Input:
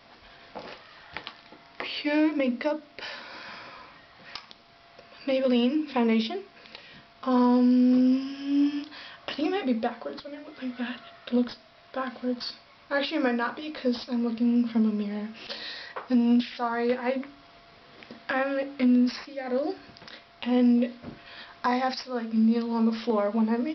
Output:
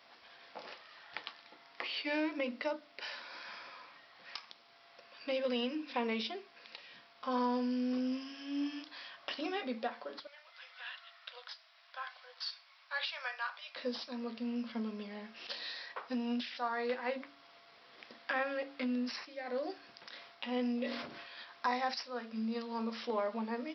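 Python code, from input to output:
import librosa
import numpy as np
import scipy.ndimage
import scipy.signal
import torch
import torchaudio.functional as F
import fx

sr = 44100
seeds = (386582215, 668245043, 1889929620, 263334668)

y = fx.bessel_highpass(x, sr, hz=1100.0, order=8, at=(10.27, 13.76))
y = fx.sustainer(y, sr, db_per_s=52.0, at=(20.09, 21.34))
y = fx.highpass(y, sr, hz=680.0, slope=6)
y = y * librosa.db_to_amplitude(-5.0)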